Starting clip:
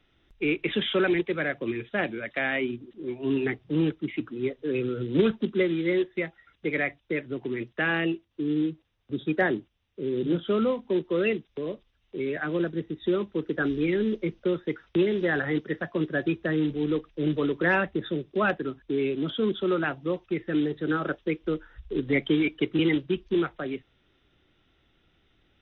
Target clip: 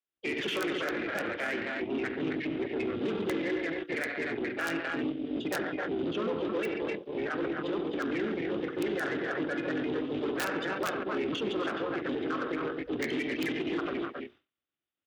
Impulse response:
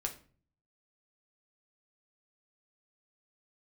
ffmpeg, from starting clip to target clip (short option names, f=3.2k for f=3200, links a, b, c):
-filter_complex "[0:a]aecho=1:1:72|113|151|231|444|486:0.141|0.126|0.2|0.168|0.355|0.237,asplit=3[a][b][c];[b]asetrate=37084,aresample=44100,atempo=1.18921,volume=-2dB[d];[c]asetrate=58866,aresample=44100,atempo=0.749154,volume=-17dB[e];[a][d][e]amix=inputs=3:normalize=0,adynamicequalizer=threshold=0.00891:dfrequency=150:dqfactor=2.8:tfrequency=150:tqfactor=2.8:attack=5:release=100:ratio=0.375:range=2.5:mode=cutabove:tftype=bell,asplit=2[f][g];[g]asoftclip=type=tanh:threshold=-20dB,volume=-9dB[h];[f][h]amix=inputs=2:normalize=0,bass=f=250:g=-9,treble=f=4k:g=-1,bandreject=f=60:t=h:w=6,bandreject=f=120:t=h:w=6,bandreject=f=180:t=h:w=6,bandreject=f=240:t=h:w=6,bandreject=f=300:t=h:w=6,bandreject=f=360:t=h:w=6,bandreject=f=420:t=h:w=6,bandreject=f=480:t=h:w=6,aeval=exprs='(mod(3.76*val(0)+1,2)-1)/3.76':c=same,aeval=exprs='0.266*(cos(1*acos(clip(val(0)/0.266,-1,1)))-cos(1*PI/2))+0.00376*(cos(7*acos(clip(val(0)/0.266,-1,1)))-cos(7*PI/2))+0.015*(cos(8*acos(clip(val(0)/0.266,-1,1)))-cos(8*PI/2))':c=same,alimiter=limit=-23dB:level=0:latency=1:release=28,atempo=1.7,highpass=82,agate=range=-33dB:threshold=-48dB:ratio=3:detection=peak"